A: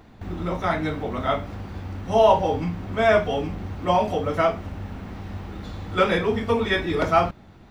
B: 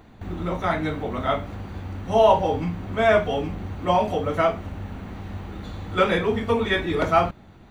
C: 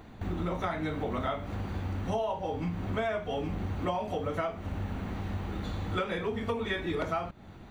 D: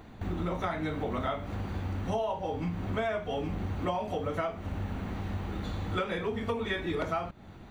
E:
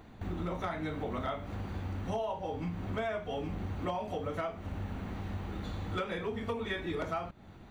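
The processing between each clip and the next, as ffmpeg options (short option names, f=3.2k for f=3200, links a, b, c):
-af "bandreject=f=5.2k:w=6.3"
-af "acompressor=threshold=-28dB:ratio=16"
-af anull
-af "asoftclip=type=hard:threshold=-22dB,volume=-3.5dB"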